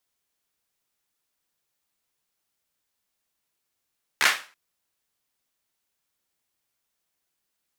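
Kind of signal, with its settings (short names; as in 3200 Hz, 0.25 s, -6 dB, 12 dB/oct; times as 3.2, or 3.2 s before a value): hand clap length 0.33 s, apart 14 ms, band 1700 Hz, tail 0.35 s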